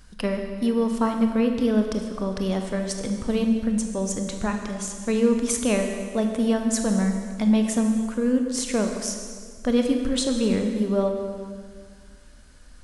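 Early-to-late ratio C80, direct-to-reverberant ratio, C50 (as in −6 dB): 6.0 dB, 4.0 dB, 5.0 dB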